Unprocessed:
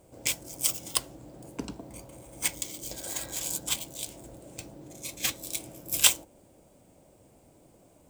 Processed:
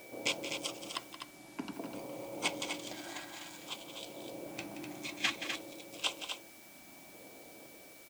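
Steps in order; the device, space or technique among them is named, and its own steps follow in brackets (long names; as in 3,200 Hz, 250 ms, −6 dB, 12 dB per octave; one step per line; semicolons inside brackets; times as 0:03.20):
shortwave radio (band-pass filter 270–2,900 Hz; amplitude tremolo 0.42 Hz, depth 74%; auto-filter notch square 0.56 Hz 490–1,800 Hz; steady tone 2,300 Hz −61 dBFS; white noise bed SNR 15 dB)
0:01.13–0:01.73: low-pass filter 11,000 Hz 12 dB per octave
loudspeakers that aren't time-aligned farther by 60 metres −11 dB, 86 metres −7 dB
level +6.5 dB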